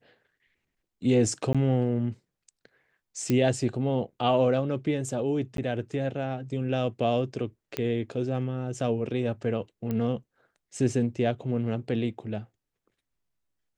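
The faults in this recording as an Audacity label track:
1.530000	1.550000	drop-out 16 ms
3.300000	3.300000	click −13 dBFS
5.570000	5.580000	drop-out 12 ms
7.770000	7.770000	click −14 dBFS
9.910000	9.910000	click −19 dBFS

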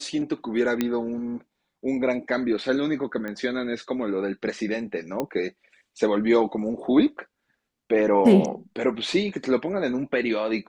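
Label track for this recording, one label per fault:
0.810000	0.810000	click −10 dBFS
3.280000	3.280000	click −21 dBFS
5.200000	5.200000	click −13 dBFS

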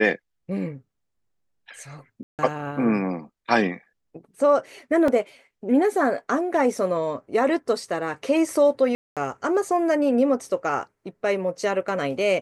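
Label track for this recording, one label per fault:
2.230000	2.390000	drop-out 158 ms
5.080000	5.080000	drop-out 3 ms
8.950000	9.170000	drop-out 217 ms

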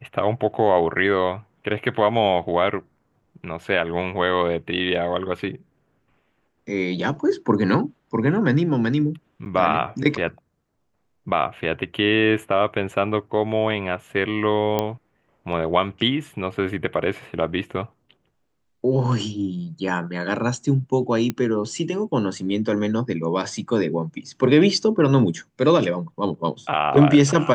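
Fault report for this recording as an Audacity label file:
9.450000	9.460000	drop-out 9 ms
14.790000	14.790000	click −8 dBFS
21.300000	21.300000	click −11 dBFS

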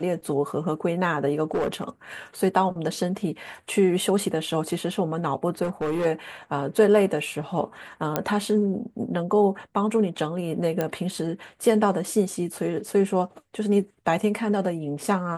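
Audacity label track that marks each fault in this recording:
1.510000	1.840000	clipping −20 dBFS
5.630000	6.060000	clipping −22 dBFS
8.160000	8.160000	click −8 dBFS
10.810000	10.810000	click −12 dBFS

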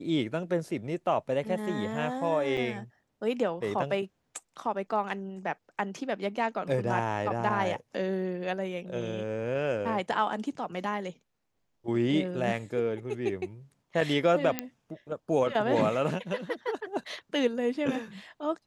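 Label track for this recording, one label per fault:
2.570000	2.580000	drop-out 6.3 ms
14.590000	14.590000	click −12 dBFS

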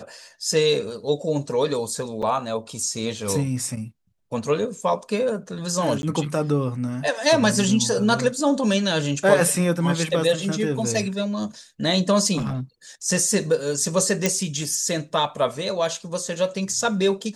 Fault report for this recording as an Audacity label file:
2.220000	2.230000	drop-out 6 ms
6.020000	6.030000	drop-out 11 ms
12.370000	12.610000	clipping −22 dBFS
14.260000	14.260000	click

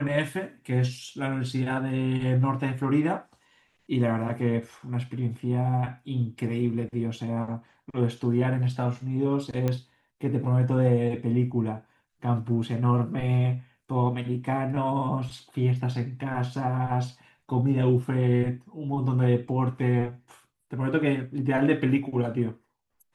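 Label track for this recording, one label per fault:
9.680000	9.680000	click −15 dBFS

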